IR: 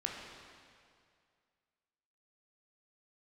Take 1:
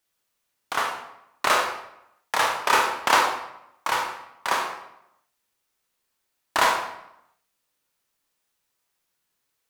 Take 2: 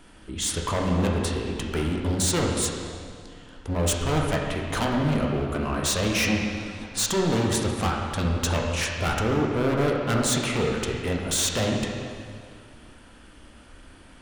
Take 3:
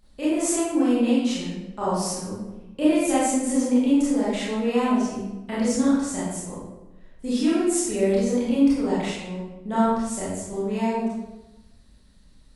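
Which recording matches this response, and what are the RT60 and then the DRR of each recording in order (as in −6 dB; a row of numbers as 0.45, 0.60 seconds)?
2; 0.80, 2.2, 1.1 seconds; 1.0, −1.0, −10.0 decibels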